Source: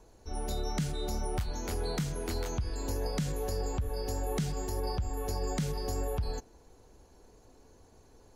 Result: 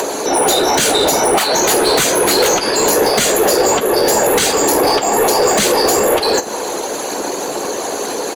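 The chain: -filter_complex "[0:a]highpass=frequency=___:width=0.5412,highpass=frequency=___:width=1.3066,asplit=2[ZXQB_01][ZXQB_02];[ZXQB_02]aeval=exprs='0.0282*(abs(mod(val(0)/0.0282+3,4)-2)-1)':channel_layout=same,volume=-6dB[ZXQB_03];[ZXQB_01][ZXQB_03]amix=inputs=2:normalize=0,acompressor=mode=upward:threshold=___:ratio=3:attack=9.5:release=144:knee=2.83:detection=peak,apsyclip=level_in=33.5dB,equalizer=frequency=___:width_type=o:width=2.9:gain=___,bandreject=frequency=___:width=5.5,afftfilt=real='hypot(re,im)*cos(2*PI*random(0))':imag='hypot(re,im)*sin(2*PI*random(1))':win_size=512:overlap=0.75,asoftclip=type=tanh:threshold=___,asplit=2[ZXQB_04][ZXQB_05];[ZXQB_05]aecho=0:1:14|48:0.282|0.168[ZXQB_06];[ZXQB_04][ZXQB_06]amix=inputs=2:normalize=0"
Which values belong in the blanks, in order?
350, 350, -40dB, 7400, 2.5, 5300, -8dB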